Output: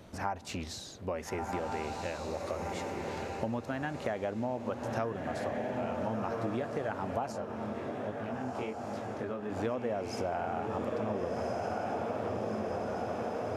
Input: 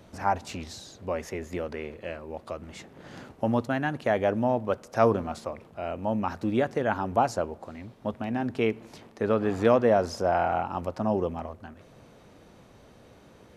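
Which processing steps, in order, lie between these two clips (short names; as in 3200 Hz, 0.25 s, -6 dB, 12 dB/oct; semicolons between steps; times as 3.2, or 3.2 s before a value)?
diffused feedback echo 1.38 s, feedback 60%, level -4.5 dB; compressor 6:1, threshold -31 dBFS, peak gain reduction 15 dB; 7.32–9.5 chorus 1.2 Hz, delay 19 ms, depth 4.8 ms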